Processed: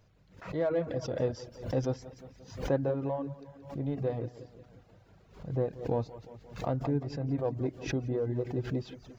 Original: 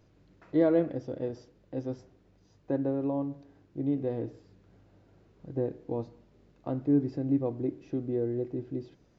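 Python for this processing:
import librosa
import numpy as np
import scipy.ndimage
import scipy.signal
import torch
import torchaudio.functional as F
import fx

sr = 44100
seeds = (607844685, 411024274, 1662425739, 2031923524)

p1 = fx.peak_eq(x, sr, hz=310.0, db=-12.0, octaves=0.73)
p2 = 10.0 ** (-35.0 / 20.0) * np.tanh(p1 / 10.0 ** (-35.0 / 20.0))
p3 = p1 + (p2 * 10.0 ** (-9.5 / 20.0))
p4 = fx.rider(p3, sr, range_db=5, speed_s=0.5)
p5 = fx.echo_feedback(p4, sr, ms=176, feedback_pct=50, wet_db=-11)
p6 = fx.dereverb_blind(p5, sr, rt60_s=0.66)
p7 = fx.pre_swell(p6, sr, db_per_s=110.0)
y = p7 * 10.0 ** (3.0 / 20.0)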